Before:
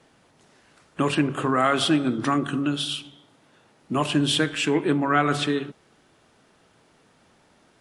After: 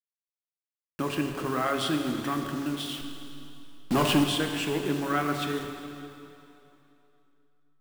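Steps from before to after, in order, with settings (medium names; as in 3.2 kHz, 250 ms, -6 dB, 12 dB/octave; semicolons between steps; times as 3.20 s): send-on-delta sampling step -30.5 dBFS; 3.01–4.24 s: waveshaping leveller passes 3; plate-style reverb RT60 2.9 s, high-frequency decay 0.9×, DRR 4.5 dB; trim -7.5 dB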